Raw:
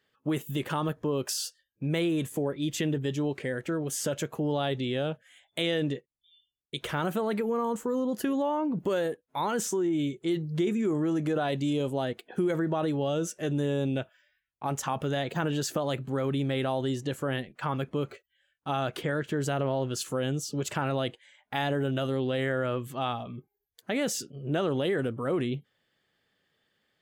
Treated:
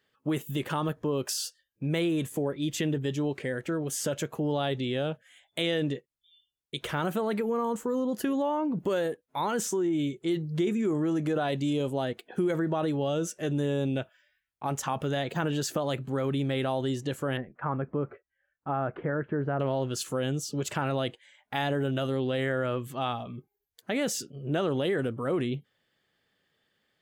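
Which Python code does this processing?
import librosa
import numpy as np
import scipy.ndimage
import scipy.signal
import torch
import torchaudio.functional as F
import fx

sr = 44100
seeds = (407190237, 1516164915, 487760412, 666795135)

y = fx.lowpass(x, sr, hz=1700.0, slope=24, at=(17.37, 19.6))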